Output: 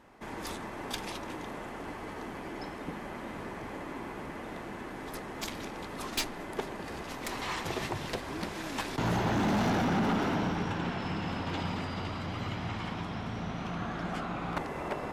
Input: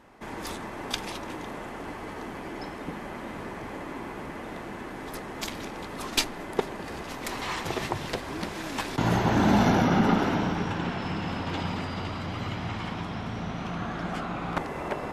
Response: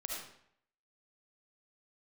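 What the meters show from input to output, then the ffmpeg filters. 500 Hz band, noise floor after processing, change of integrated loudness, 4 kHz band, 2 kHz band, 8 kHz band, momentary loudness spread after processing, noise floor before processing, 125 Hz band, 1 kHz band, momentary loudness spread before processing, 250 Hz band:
-4.5 dB, -42 dBFS, -4.5 dB, -4.5 dB, -4.0 dB, -4.5 dB, 12 LU, -39 dBFS, -4.5 dB, -4.5 dB, 15 LU, -5.0 dB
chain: -af "asoftclip=type=hard:threshold=-22dB,volume=-3dB"

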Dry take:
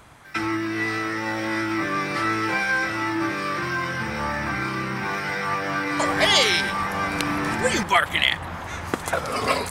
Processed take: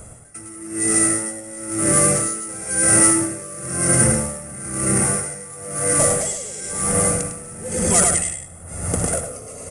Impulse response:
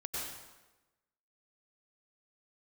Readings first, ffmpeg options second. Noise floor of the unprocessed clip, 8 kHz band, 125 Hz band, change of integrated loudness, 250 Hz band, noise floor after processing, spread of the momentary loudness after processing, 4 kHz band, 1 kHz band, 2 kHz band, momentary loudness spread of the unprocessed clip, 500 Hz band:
-34 dBFS, +20.0 dB, +7.0 dB, +5.5 dB, +2.5 dB, -39 dBFS, 16 LU, -10.5 dB, -5.5 dB, -7.0 dB, 8 LU, +3.0 dB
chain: -filter_complex "[0:a]aemphasis=mode=reproduction:type=75fm,aecho=1:1:1.5:0.53,aecho=1:1:104:0.631,asoftclip=type=tanh:threshold=-21dB,asplit=2[a][b];[1:a]atrim=start_sample=2205,afade=t=out:st=0.16:d=0.01,atrim=end_sample=7497,adelay=76[c];[b][c]afir=irnorm=-1:irlink=0,volume=-7.5dB[d];[a][d]amix=inputs=2:normalize=0,acrusher=samples=4:mix=1:aa=0.000001,lowshelf=f=640:t=q:w=1.5:g=9,aresample=22050,aresample=44100,aexciter=amount=13.7:drive=5.4:freq=5.8k,dynaudnorm=f=320:g=11:m=11.5dB,aeval=exprs='val(0)*pow(10,-20*(0.5-0.5*cos(2*PI*1*n/s))/20)':c=same"

